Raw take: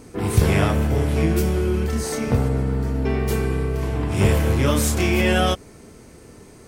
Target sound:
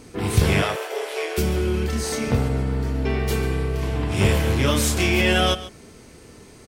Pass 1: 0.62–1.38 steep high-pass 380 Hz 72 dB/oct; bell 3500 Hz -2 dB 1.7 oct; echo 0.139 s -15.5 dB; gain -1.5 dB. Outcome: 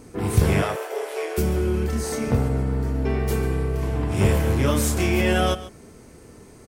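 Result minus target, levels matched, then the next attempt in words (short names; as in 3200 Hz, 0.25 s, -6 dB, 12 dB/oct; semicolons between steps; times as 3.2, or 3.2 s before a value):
4000 Hz band -6.5 dB
0.62–1.38 steep high-pass 380 Hz 72 dB/oct; bell 3500 Hz +6 dB 1.7 oct; echo 0.139 s -15.5 dB; gain -1.5 dB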